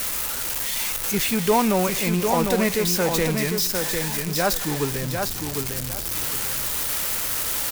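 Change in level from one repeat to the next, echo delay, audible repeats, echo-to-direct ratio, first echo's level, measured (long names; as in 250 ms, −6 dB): −12.5 dB, 752 ms, 2, −5.0 dB, −5.0 dB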